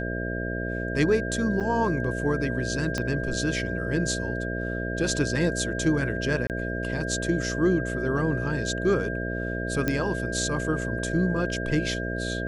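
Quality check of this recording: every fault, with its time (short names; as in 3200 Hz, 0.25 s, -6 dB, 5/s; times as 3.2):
buzz 60 Hz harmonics 11 -31 dBFS
tone 1600 Hz -33 dBFS
1.6–1.61 gap 7.1 ms
2.98 pop -14 dBFS
6.47–6.5 gap 28 ms
9.88 pop -11 dBFS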